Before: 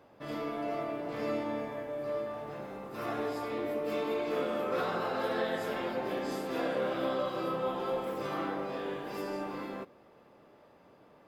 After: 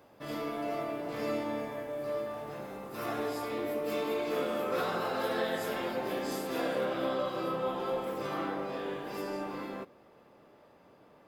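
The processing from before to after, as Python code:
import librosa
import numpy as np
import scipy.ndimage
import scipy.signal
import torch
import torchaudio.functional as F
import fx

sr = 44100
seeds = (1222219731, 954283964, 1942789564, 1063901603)

y = fx.high_shelf(x, sr, hz=6100.0, db=fx.steps((0.0, 10.0), (6.84, 2.5)))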